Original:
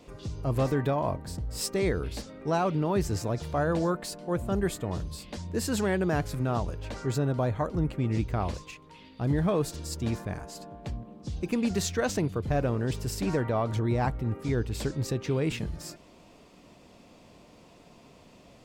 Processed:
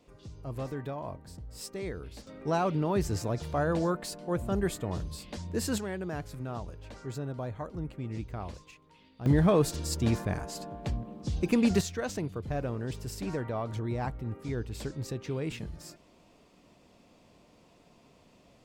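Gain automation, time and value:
-10 dB
from 2.27 s -1.5 dB
from 5.78 s -9 dB
from 9.26 s +3 dB
from 11.81 s -6 dB

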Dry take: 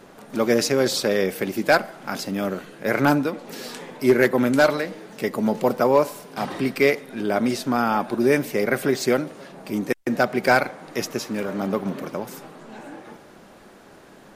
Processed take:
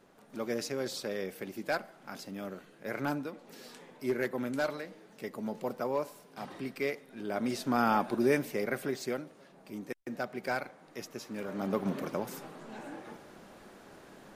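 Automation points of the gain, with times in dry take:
7.12 s -15 dB
7.89 s -5 dB
9.29 s -16 dB
11.1 s -16 dB
11.9 s -5 dB

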